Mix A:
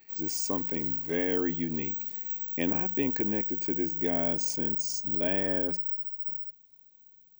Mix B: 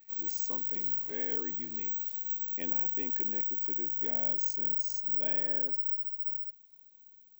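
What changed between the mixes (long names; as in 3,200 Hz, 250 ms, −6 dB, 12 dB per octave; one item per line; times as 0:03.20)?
speech −10.5 dB
master: add low-shelf EQ 210 Hz −10 dB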